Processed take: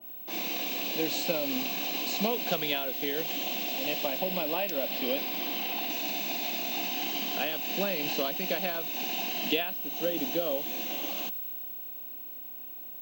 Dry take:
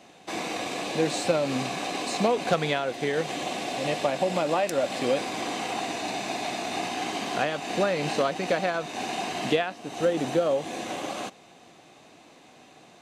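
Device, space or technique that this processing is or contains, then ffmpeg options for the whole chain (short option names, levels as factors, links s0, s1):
old television with a line whistle: -filter_complex "[0:a]asettb=1/sr,asplit=3[s0][s1][s2];[s0]atrim=end=4.204[s3];[s1]atrim=start=4.2:end=5.9,asetpts=PTS-STARTPTS,afade=t=in:d=0.004:c=qsin,afade=t=out:st=1.696:d=0.004:c=qsin,lowpass=5200[s4];[s2]atrim=start=5.896[s5];[s3][s4]acrossfade=d=0.004:c1=hsin:c2=qsin[s6];[s6][s5]acrossfade=d=0.004:c1=qsin:c2=hsin,highpass=f=180:w=0.5412,highpass=f=180:w=1.3066,equalizer=f=190:t=q:w=4:g=6,equalizer=f=280:t=q:w=4:g=4,equalizer=f=1300:t=q:w=4:g=-7,equalizer=f=1900:t=q:w=4:g=-5,equalizer=f=2900:t=q:w=4:g=6,lowpass=f=6800:w=0.5412,lowpass=f=6800:w=1.3066,aeval=exprs='val(0)+0.0251*sin(2*PI*15734*n/s)':c=same,adynamicequalizer=threshold=0.00708:dfrequency=1800:dqfactor=0.7:tfrequency=1800:tqfactor=0.7:attack=5:release=100:ratio=0.375:range=3.5:mode=boostabove:tftype=highshelf,volume=0.422"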